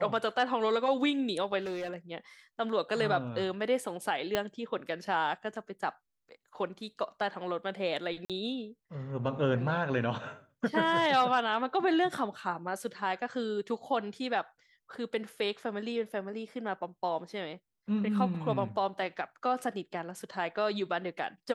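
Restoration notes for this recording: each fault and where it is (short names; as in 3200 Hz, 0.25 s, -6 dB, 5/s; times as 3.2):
1.59–1.96 clipped -32 dBFS
4.35 pop -13 dBFS
8.25–8.3 gap 47 ms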